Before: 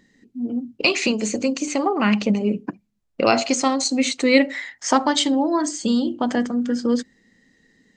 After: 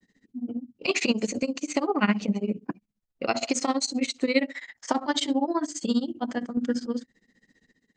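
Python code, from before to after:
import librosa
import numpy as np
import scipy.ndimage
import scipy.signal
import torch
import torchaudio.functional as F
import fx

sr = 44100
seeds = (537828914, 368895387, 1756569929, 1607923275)

y = fx.granulator(x, sr, seeds[0], grain_ms=76.0, per_s=15.0, spray_ms=18.0, spread_st=0)
y = fx.tremolo_random(y, sr, seeds[1], hz=3.5, depth_pct=55)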